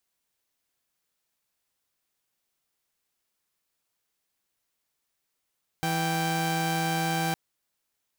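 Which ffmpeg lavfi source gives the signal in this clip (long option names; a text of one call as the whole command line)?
ffmpeg -f lavfi -i "aevalsrc='0.0531*((2*mod(164.81*t,1)-1)+(2*mod(783.99*t,1)-1))':duration=1.51:sample_rate=44100" out.wav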